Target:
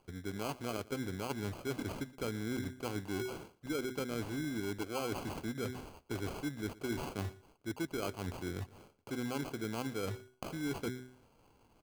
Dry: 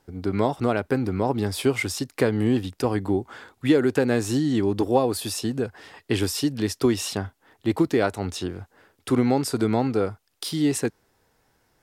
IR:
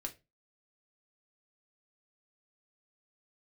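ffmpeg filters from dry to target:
-af "highshelf=f=7.5k:g=-6.5,bandreject=f=126.6:t=h:w=4,bandreject=f=253.2:t=h:w=4,bandreject=f=379.8:t=h:w=4,areverse,acompressor=threshold=-37dB:ratio=5,areverse,acrusher=samples=24:mix=1:aa=0.000001,aecho=1:1:118:0.0891"

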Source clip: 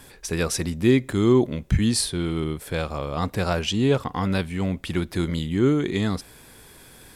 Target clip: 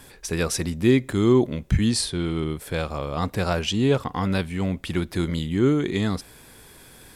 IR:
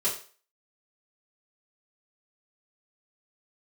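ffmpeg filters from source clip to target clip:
-filter_complex "[0:a]asettb=1/sr,asplit=3[a][b][c];[a]atrim=end=1.904[d];[b]atrim=start=1.9:end=2.5,asetpts=PTS-STARTPTS,afade=t=in:d=0.004:c=qsin,afade=t=out:st=0.596:d=0.004:c=qsin,lowpass=9.3k[e];[c]atrim=start=2.496[f];[d][e]acrossfade=d=0.004:c1=hsin:c2=qsin[g];[g][f]acrossfade=d=0.004:c1=qsin:c2=hsin"

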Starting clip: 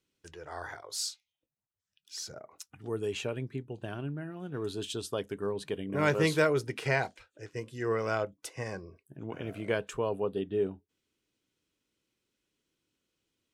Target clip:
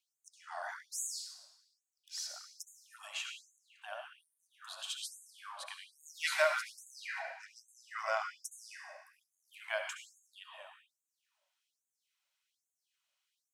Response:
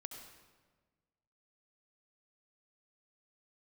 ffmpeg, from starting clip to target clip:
-filter_complex "[1:a]atrim=start_sample=2205[a];[0:a][a]afir=irnorm=-1:irlink=0,afftfilt=real='re*gte(b*sr/1024,540*pow(6400/540,0.5+0.5*sin(2*PI*1.2*pts/sr)))':imag='im*gte(b*sr/1024,540*pow(6400/540,0.5+0.5*sin(2*PI*1.2*pts/sr)))':win_size=1024:overlap=0.75,volume=4dB"

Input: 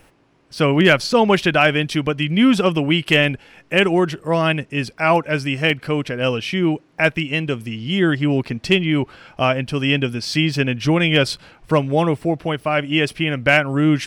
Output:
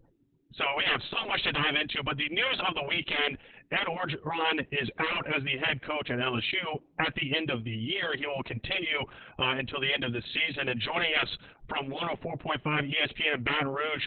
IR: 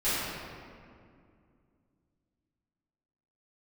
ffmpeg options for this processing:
-filter_complex "[0:a]asplit=3[a][b][c];[a]afade=t=out:st=4.82:d=0.02[d];[b]acontrast=32,afade=t=in:st=4.82:d=0.02,afade=t=out:st=5.26:d=0.02[e];[c]afade=t=in:st=5.26:d=0.02[f];[d][e][f]amix=inputs=3:normalize=0,adynamicequalizer=threshold=0.02:dfrequency=4200:dqfactor=1.2:tfrequency=4200:tqfactor=1.2:attack=5:release=100:ratio=0.375:range=1.5:mode=boostabove:tftype=bell,afftfilt=real='re*lt(hypot(re,im),0.447)':imag='im*lt(hypot(re,im),0.447)':win_size=1024:overlap=0.75,afftdn=nr=33:nf=-47,volume=-2.5dB" -ar 48000 -c:a libopus -b:a 8k

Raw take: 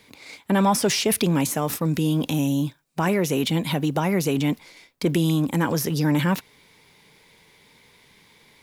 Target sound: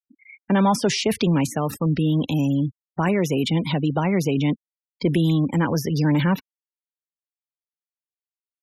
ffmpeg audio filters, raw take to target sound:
-filter_complex "[0:a]afftfilt=real='re*gte(hypot(re,im),0.0282)':imag='im*gte(hypot(re,im),0.0282)':win_size=1024:overlap=0.75,lowshelf=f=100:g=8.5,acrossover=split=240|6900[a][b][c];[c]acompressor=threshold=-40dB:ratio=6[d];[a][b][d]amix=inputs=3:normalize=0"

